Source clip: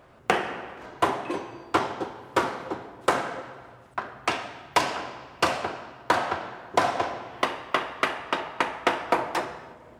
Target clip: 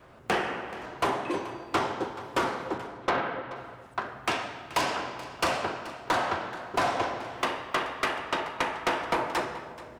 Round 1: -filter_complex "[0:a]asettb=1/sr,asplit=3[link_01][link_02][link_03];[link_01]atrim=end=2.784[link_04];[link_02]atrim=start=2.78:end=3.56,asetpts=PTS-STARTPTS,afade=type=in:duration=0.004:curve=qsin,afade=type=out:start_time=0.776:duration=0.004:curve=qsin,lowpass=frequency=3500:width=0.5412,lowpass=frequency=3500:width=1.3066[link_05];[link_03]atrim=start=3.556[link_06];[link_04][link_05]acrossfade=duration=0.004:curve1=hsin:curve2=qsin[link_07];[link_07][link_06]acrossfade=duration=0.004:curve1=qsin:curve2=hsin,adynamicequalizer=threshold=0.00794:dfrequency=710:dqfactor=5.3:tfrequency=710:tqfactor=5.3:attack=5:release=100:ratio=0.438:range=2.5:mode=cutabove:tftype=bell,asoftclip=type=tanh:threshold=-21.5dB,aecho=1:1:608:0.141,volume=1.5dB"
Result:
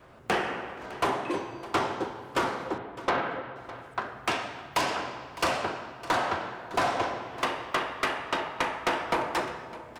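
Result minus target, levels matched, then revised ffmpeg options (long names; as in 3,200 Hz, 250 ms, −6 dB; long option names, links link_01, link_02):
echo 178 ms late
-filter_complex "[0:a]asettb=1/sr,asplit=3[link_01][link_02][link_03];[link_01]atrim=end=2.784[link_04];[link_02]atrim=start=2.78:end=3.56,asetpts=PTS-STARTPTS,afade=type=in:duration=0.004:curve=qsin,afade=type=out:start_time=0.776:duration=0.004:curve=qsin,lowpass=frequency=3500:width=0.5412,lowpass=frequency=3500:width=1.3066[link_05];[link_03]atrim=start=3.556[link_06];[link_04][link_05]acrossfade=duration=0.004:curve1=hsin:curve2=qsin[link_07];[link_07][link_06]acrossfade=duration=0.004:curve1=qsin:curve2=hsin,adynamicequalizer=threshold=0.00794:dfrequency=710:dqfactor=5.3:tfrequency=710:tqfactor=5.3:attack=5:release=100:ratio=0.438:range=2.5:mode=cutabove:tftype=bell,asoftclip=type=tanh:threshold=-21.5dB,aecho=1:1:430:0.141,volume=1.5dB"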